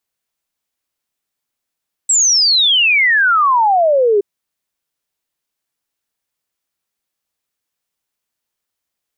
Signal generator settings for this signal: log sweep 7.9 kHz -> 390 Hz 2.12 s -9 dBFS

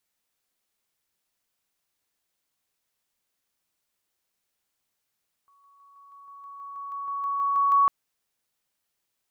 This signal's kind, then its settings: level ladder 1.12 kHz -58 dBFS, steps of 3 dB, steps 15, 0.16 s 0.00 s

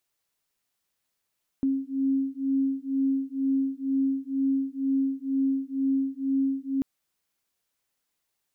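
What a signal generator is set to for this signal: beating tones 269 Hz, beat 2.1 Hz, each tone -26.5 dBFS 5.19 s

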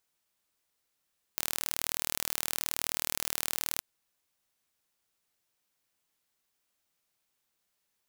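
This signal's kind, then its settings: pulse train 39 per s, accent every 0, -4 dBFS 2.42 s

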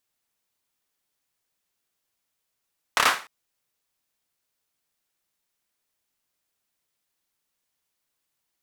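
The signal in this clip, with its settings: hand clap length 0.30 s, apart 28 ms, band 1.3 kHz, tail 0.35 s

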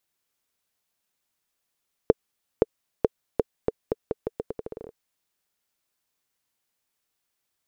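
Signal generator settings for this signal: bouncing ball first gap 0.52 s, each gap 0.82, 447 Hz, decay 29 ms -3 dBFS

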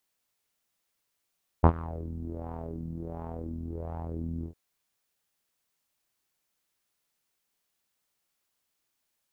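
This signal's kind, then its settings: synth patch with filter wobble E2, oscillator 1 saw, filter lowpass, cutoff 310 Hz, Q 3, filter envelope 1.5 oct, filter decay 0.27 s, filter sustain 35%, attack 19 ms, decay 0.07 s, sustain -21 dB, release 0.10 s, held 2.81 s, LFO 1.4 Hz, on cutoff 1 oct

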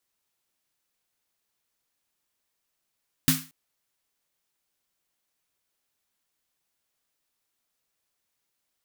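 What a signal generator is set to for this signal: snare drum length 0.23 s, tones 160 Hz, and 260 Hz, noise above 1.1 kHz, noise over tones 0.5 dB, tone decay 0.29 s, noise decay 0.33 s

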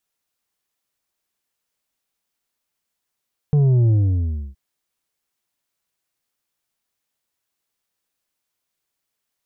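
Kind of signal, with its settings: sub drop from 150 Hz, over 1.02 s, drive 6 dB, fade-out 0.65 s, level -13 dB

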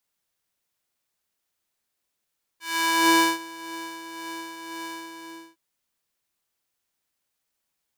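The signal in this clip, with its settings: synth patch with tremolo E4, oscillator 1 square, interval 0 st, oscillator 2 level -13 dB, filter highpass, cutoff 400 Hz, Q 0.9, filter envelope 2 oct, filter decay 0.49 s, filter sustain 30%, attack 470 ms, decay 0.31 s, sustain -21 dB, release 0.57 s, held 2.39 s, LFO 1.9 Hz, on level 5 dB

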